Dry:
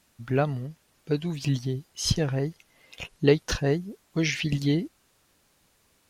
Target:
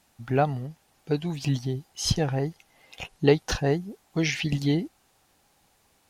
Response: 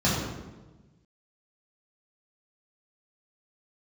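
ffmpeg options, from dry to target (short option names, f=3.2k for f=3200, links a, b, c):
-af "equalizer=f=790:w=4.7:g=10"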